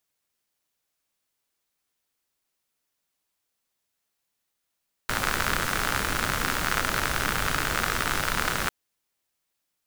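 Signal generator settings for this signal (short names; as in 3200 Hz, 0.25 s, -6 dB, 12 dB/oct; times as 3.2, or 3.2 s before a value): rain from filtered ticks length 3.60 s, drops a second 76, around 1400 Hz, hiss -0.5 dB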